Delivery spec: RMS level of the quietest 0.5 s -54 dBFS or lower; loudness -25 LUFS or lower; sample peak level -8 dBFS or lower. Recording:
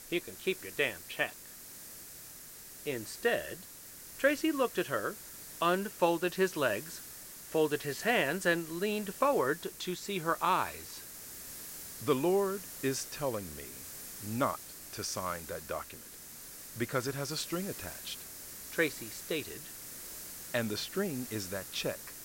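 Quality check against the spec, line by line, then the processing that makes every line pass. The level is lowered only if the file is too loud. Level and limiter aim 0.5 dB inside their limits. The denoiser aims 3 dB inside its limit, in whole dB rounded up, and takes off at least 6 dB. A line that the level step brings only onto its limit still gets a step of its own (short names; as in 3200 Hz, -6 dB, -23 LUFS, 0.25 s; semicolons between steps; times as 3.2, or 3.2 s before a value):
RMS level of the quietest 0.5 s -50 dBFS: fail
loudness -34.0 LUFS: OK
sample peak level -13.0 dBFS: OK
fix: denoiser 7 dB, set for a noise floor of -50 dBFS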